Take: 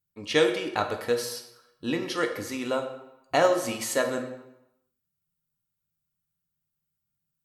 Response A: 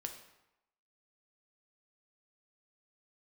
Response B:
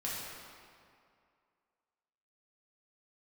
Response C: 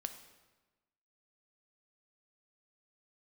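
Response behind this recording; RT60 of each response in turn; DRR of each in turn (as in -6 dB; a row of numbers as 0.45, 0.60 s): A; 0.90, 2.3, 1.2 s; 4.5, -7.0, 7.5 dB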